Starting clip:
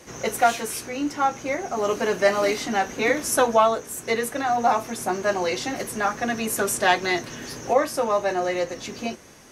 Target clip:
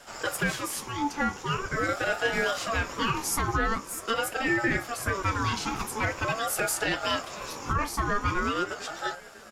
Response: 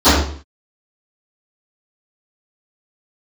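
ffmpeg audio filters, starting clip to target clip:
-filter_complex "[0:a]alimiter=limit=-15dB:level=0:latency=1:release=61,asplit=2[link_01][link_02];[link_02]adelay=551,lowpass=frequency=2000:poles=1,volume=-18dB,asplit=2[link_03][link_04];[link_04]adelay=551,lowpass=frequency=2000:poles=1,volume=0.51,asplit=2[link_05][link_06];[link_06]adelay=551,lowpass=frequency=2000:poles=1,volume=0.51,asplit=2[link_07][link_08];[link_08]adelay=551,lowpass=frequency=2000:poles=1,volume=0.51[link_09];[link_01][link_03][link_05][link_07][link_09]amix=inputs=5:normalize=0,aeval=exprs='val(0)*sin(2*PI*820*n/s+820*0.3/0.44*sin(2*PI*0.44*n/s))':channel_layout=same"

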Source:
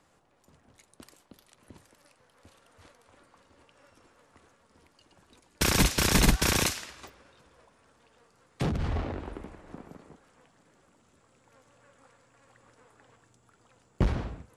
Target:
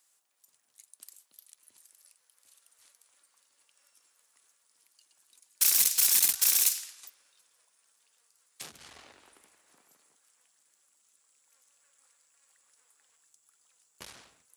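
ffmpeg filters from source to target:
ffmpeg -i in.wav -af "crystalizer=i=1:c=0,aeval=exprs='(tanh(8.91*val(0)+0.75)-tanh(0.75))/8.91':channel_layout=same,aderivative,volume=5dB" out.wav

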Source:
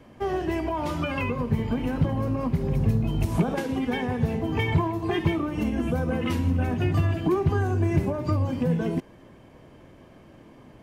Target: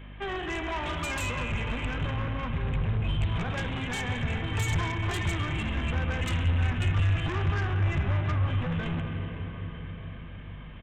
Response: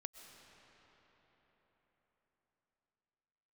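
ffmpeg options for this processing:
-filter_complex "[0:a]bandreject=frequency=60:width_type=h:width=6,bandreject=frequency=120:width_type=h:width=6[link_01];[1:a]atrim=start_sample=2205[link_02];[link_01][link_02]afir=irnorm=-1:irlink=0,aresample=8000,asoftclip=type=tanh:threshold=-30dB,aresample=44100,asubboost=boost=6:cutoff=110,acrossover=split=240|1400[link_03][link_04][link_05];[link_05]aeval=exprs='0.0282*sin(PI/2*3.55*val(0)/0.0282)':channel_layout=same[link_06];[link_03][link_04][link_06]amix=inputs=3:normalize=0,aeval=exprs='val(0)+0.00708*(sin(2*PI*50*n/s)+sin(2*PI*2*50*n/s)/2+sin(2*PI*3*50*n/s)/3+sin(2*PI*4*50*n/s)/4+sin(2*PI*5*50*n/s)/5)':channel_layout=same"

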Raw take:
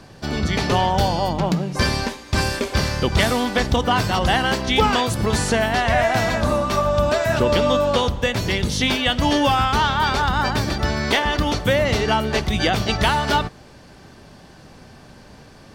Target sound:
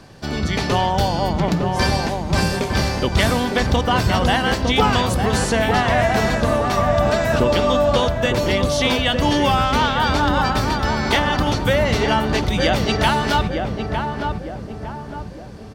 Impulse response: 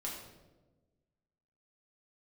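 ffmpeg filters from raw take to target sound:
-filter_complex "[0:a]asplit=2[link_01][link_02];[link_02]adelay=907,lowpass=frequency=1100:poles=1,volume=-3dB,asplit=2[link_03][link_04];[link_04]adelay=907,lowpass=frequency=1100:poles=1,volume=0.49,asplit=2[link_05][link_06];[link_06]adelay=907,lowpass=frequency=1100:poles=1,volume=0.49,asplit=2[link_07][link_08];[link_08]adelay=907,lowpass=frequency=1100:poles=1,volume=0.49,asplit=2[link_09][link_10];[link_10]adelay=907,lowpass=frequency=1100:poles=1,volume=0.49,asplit=2[link_11][link_12];[link_12]adelay=907,lowpass=frequency=1100:poles=1,volume=0.49[link_13];[link_01][link_03][link_05][link_07][link_09][link_11][link_13]amix=inputs=7:normalize=0"

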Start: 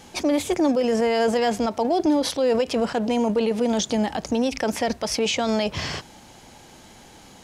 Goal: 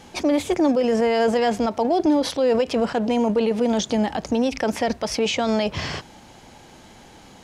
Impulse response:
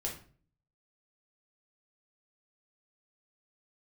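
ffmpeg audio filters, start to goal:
-af "highshelf=frequency=5600:gain=-7,volume=1.5dB"

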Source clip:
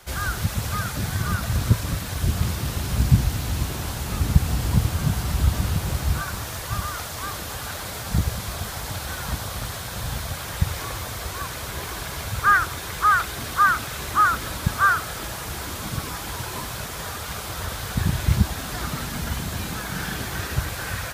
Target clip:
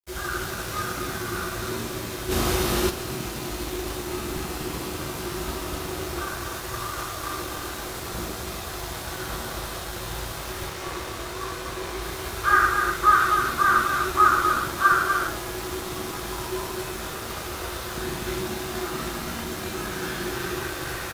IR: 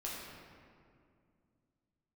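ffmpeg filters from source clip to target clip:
-filter_complex "[0:a]aecho=1:1:247:0.531,acrossover=split=280|1400|1800[link_01][link_02][link_03][link_04];[link_01]acompressor=threshold=-33dB:ratio=6[link_05];[link_05][link_02][link_03][link_04]amix=inputs=4:normalize=0,asettb=1/sr,asplit=3[link_06][link_07][link_08];[link_06]atrim=end=10.664[link_09];[link_07]atrim=start=10.66:end=12.02,asetpts=PTS-STARTPTS,afade=type=in:duration=0.004:curve=qsin,afade=type=out:start_time=1.356:duration=0.004:curve=qsin,highshelf=frequency=11000:gain=-8[link_10];[link_08]atrim=start=12.016[link_11];[link_09][link_10]acrossfade=duration=0.004:curve1=hsin:curve2=qsin[link_12];[link_12][link_11]acrossfade=duration=0.004:curve1=qsin:curve2=hsin[link_13];[1:a]atrim=start_sample=2205,afade=type=out:start_time=0.2:duration=0.01,atrim=end_sample=9261[link_14];[link_13][link_14]afir=irnorm=-1:irlink=0,asplit=3[link_15][link_16][link_17];[link_15]afade=type=out:start_time=2.3:duration=0.02[link_18];[link_16]acontrast=79,afade=type=in:start_time=2.3:duration=0.02,afade=type=out:start_time=2.89:duration=0.02[link_19];[link_17]afade=type=in:start_time=2.89:duration=0.02[link_20];[link_18][link_19][link_20]amix=inputs=3:normalize=0,aeval=exprs='sgn(val(0))*max(abs(val(0))-0.00668,0)':channel_layout=same,equalizer=frequency=360:width_type=o:width=0.27:gain=14"

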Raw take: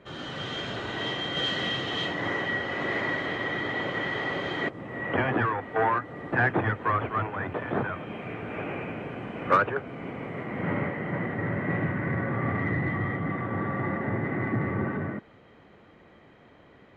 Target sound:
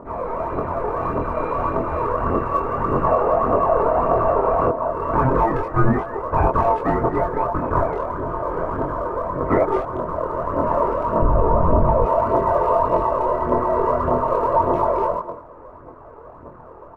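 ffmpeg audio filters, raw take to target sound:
ffmpeg -i in.wav -filter_complex "[0:a]bandreject=frequency=590:width=12,aeval=exprs='val(0)*sin(2*PI*790*n/s)':channel_layout=same,lowpass=frequency=1100:width=0.5412,lowpass=frequency=1100:width=1.3066,asplit=2[link_01][link_02];[link_02]adelay=200,highpass=300,lowpass=3400,asoftclip=type=hard:threshold=-25dB,volume=-13dB[link_03];[link_01][link_03]amix=inputs=2:normalize=0,aphaser=in_gain=1:out_gain=1:delay=2.5:decay=0.54:speed=1.7:type=triangular,asettb=1/sr,asplit=3[link_04][link_05][link_06];[link_04]atrim=end=3.034[link_07];[link_05]atrim=start=3.03:end=4.9,asetpts=PTS-STARTPTS,afade=type=in:duration=0.004:curve=qsin,afade=type=out:start_time=1.866:duration=0.004:curve=qsin,equalizer=frequency=690:width_type=o:width=0.73:gain=13[link_08];[link_06]atrim=start=4.896[link_09];[link_07][link_08]acrossfade=duration=0.004:curve1=hsin:curve2=qsin[link_10];[link_10][link_09]acrossfade=duration=0.004:curve1=qsin:curve2=hsin,asplit=2[link_11][link_12];[link_12]acompressor=threshold=-41dB:ratio=6,volume=-1dB[link_13];[link_11][link_13]amix=inputs=2:normalize=0,flanger=delay=22.5:depth=2.1:speed=0.33,asettb=1/sr,asplit=3[link_14][link_15][link_16];[link_14]atrim=end=11.224[link_17];[link_15]atrim=start=11.22:end=12.06,asetpts=PTS-STARTPTS,afade=type=in:duration=0.004:curve=qsin,afade=type=out:start_time=0.836:duration=0.004:curve=qsin,aemphasis=mode=reproduction:type=riaa[link_18];[link_16]atrim=start=12.056[link_19];[link_17][link_18]acrossfade=duration=0.004:curve1=hsin:curve2=qsin[link_20];[link_20][link_19]acrossfade=duration=0.004:curve1=qsin:curve2=hsin,alimiter=level_in=19.5dB:limit=-1dB:release=50:level=0:latency=1,volume=-5.5dB" out.wav

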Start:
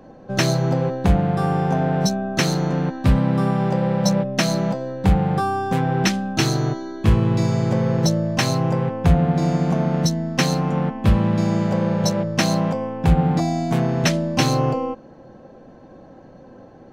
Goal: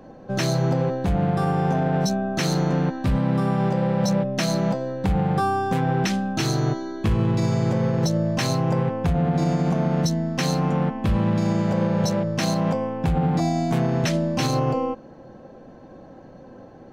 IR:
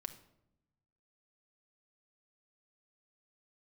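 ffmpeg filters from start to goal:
-af "alimiter=limit=-13.5dB:level=0:latency=1:release=47"

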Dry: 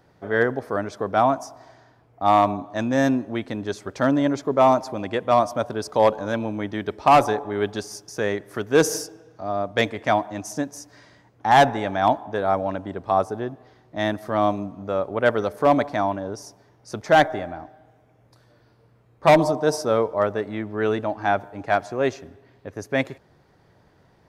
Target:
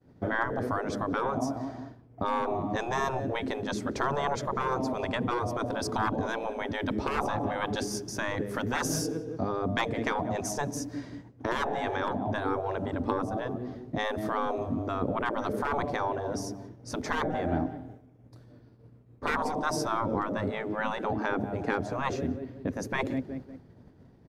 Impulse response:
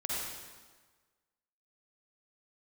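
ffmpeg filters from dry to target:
-filter_complex "[0:a]asplit=2[link_01][link_02];[link_02]adelay=182,lowpass=frequency=2600:poles=1,volume=-21dB,asplit=2[link_03][link_04];[link_04]adelay=182,lowpass=frequency=2600:poles=1,volume=0.48,asplit=2[link_05][link_06];[link_06]adelay=182,lowpass=frequency=2600:poles=1,volume=0.48[link_07];[link_03][link_05][link_07]amix=inputs=3:normalize=0[link_08];[link_01][link_08]amix=inputs=2:normalize=0,agate=range=-33dB:threshold=-50dB:ratio=3:detection=peak,acrossover=split=450[link_09][link_10];[link_09]aeval=exprs='0.282*sin(PI/2*2.51*val(0)/0.282)':channel_layout=same[link_11];[link_10]acompressor=threshold=-28dB:ratio=4[link_12];[link_11][link_12]amix=inputs=2:normalize=0,afftfilt=real='re*lt(hypot(re,im),0.316)':imag='im*lt(hypot(re,im),0.316)':win_size=1024:overlap=0.75,equalizer=frequency=250:width_type=o:width=0.24:gain=8.5"

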